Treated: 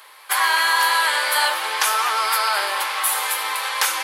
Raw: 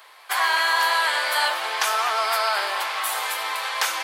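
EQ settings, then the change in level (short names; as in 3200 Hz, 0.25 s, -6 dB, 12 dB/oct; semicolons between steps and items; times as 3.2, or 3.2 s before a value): Butterworth band-stop 690 Hz, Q 7; bell 11000 Hz +8 dB 0.56 oct; +2.5 dB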